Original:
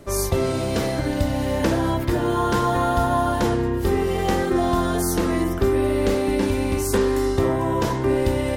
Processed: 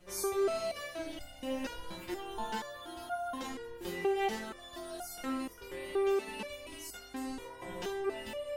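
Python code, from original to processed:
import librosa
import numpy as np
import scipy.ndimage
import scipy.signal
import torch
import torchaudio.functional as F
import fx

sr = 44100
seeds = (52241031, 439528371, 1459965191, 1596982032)

y = fx.dmg_wind(x, sr, seeds[0], corner_hz=98.0, level_db=-30.0)
y = fx.peak_eq(y, sr, hz=2800.0, db=5.0, octaves=0.75)
y = fx.rider(y, sr, range_db=10, speed_s=0.5)
y = fx.low_shelf(y, sr, hz=310.0, db=-10.5)
y = fx.resonator_held(y, sr, hz=4.2, low_hz=180.0, high_hz=710.0)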